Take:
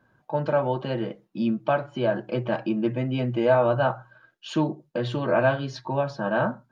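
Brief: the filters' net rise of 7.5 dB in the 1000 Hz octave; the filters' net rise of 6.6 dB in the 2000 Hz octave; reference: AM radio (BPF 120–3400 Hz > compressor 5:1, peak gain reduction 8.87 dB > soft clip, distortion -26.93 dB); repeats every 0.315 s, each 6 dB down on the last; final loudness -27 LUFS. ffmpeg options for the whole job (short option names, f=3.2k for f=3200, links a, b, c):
-af "highpass=120,lowpass=3.4k,equalizer=f=1k:t=o:g=8.5,equalizer=f=2k:t=o:g=5.5,aecho=1:1:315|630|945|1260|1575|1890:0.501|0.251|0.125|0.0626|0.0313|0.0157,acompressor=threshold=-19dB:ratio=5,asoftclip=threshold=-10dB,volume=-1.5dB"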